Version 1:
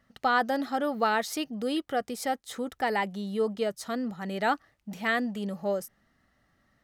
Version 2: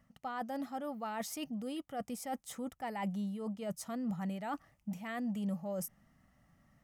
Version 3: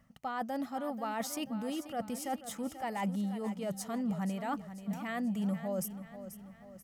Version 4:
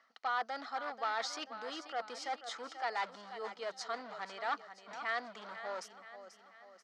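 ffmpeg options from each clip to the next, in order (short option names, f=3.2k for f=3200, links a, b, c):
-af "areverse,acompressor=threshold=-36dB:ratio=6,areverse,equalizer=f=160:t=o:w=0.67:g=6,equalizer=f=400:t=o:w=0.67:g=-10,equalizer=f=1.6k:t=o:w=0.67:g=-8,equalizer=f=4k:t=o:w=0.67:g=-11,volume=2dB"
-af "aecho=1:1:486|972|1458|1944|2430:0.251|0.121|0.0579|0.0278|0.0133,volume=3dB"
-af "asoftclip=type=hard:threshold=-32dB,highpass=f=490:w=0.5412,highpass=f=490:w=1.3066,equalizer=f=570:t=q:w=4:g=-10,equalizer=f=850:t=q:w=4:g=-4,equalizer=f=1.4k:t=q:w=4:g=4,equalizer=f=2.7k:t=q:w=4:g=-6,equalizer=f=4.3k:t=q:w=4:g=6,lowpass=f=5.2k:w=0.5412,lowpass=f=5.2k:w=1.3066,volume=5dB"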